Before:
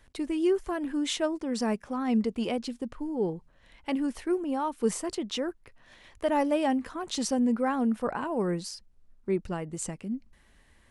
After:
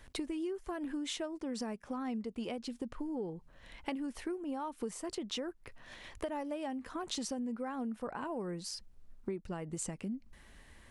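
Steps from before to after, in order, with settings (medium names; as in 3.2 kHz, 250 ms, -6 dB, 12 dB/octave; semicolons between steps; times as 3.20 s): compression 12:1, threshold -39 dBFS, peak gain reduction 19 dB; trim +3.5 dB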